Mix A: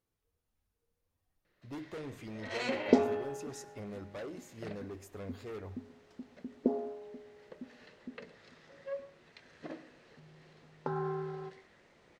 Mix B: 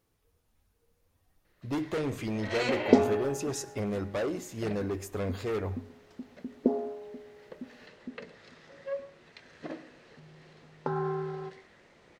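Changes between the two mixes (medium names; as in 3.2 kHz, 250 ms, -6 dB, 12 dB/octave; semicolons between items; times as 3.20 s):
speech +11.5 dB; first sound +4.5 dB; second sound +4.0 dB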